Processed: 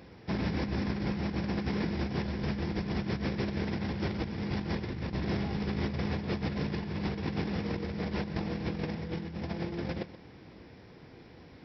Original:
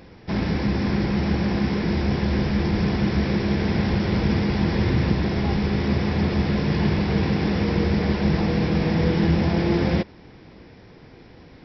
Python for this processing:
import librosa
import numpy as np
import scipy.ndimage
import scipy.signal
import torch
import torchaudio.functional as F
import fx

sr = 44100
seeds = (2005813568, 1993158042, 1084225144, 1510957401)

y = scipy.signal.sosfilt(scipy.signal.butter(2, 55.0, 'highpass', fs=sr, output='sos'), x)
y = fx.over_compress(y, sr, threshold_db=-24.0, ratio=-0.5)
y = y + 10.0 ** (-15.0 / 20.0) * np.pad(y, (int(128 * sr / 1000.0), 0))[:len(y)]
y = y * librosa.db_to_amplitude(-8.5)